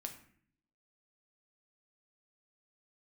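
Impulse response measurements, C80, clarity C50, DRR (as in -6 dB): 13.5 dB, 10.0 dB, 4.0 dB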